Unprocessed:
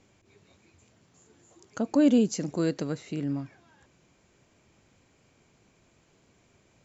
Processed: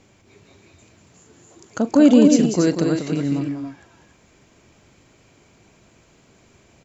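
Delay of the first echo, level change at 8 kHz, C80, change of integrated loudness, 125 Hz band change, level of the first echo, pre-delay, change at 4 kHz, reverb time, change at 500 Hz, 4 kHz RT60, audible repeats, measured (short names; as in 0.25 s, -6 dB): 40 ms, n/a, none, +9.5 dB, +9.0 dB, -16.5 dB, none, +9.5 dB, none, +9.5 dB, none, 3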